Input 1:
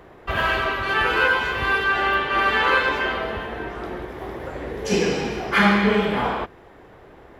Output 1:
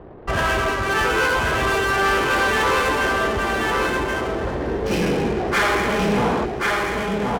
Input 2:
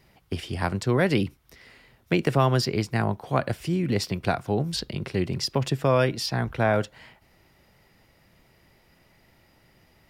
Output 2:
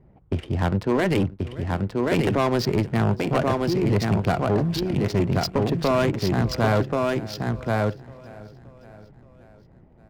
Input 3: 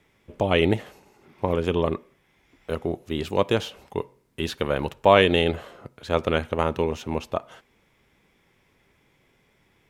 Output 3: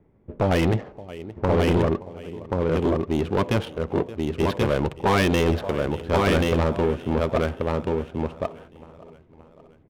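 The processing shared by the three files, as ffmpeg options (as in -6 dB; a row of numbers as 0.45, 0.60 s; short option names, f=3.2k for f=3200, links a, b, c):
-filter_complex "[0:a]tiltshelf=f=810:g=3.5,adynamicsmooth=sensitivity=7.5:basefreq=760,asplit=2[a][b];[b]aecho=0:1:574|1148|1722|2296:0.0708|0.0411|0.0238|0.0138[c];[a][c]amix=inputs=2:normalize=0,afftfilt=real='re*lt(hypot(re,im),0.891)':imag='im*lt(hypot(re,im),0.891)':win_size=1024:overlap=0.75,asplit=2[d][e];[e]aecho=0:1:1082:0.631[f];[d][f]amix=inputs=2:normalize=0,asoftclip=type=tanh:threshold=-18.5dB,volume=4.5dB"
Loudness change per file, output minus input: +0.5, +2.5, +1.0 LU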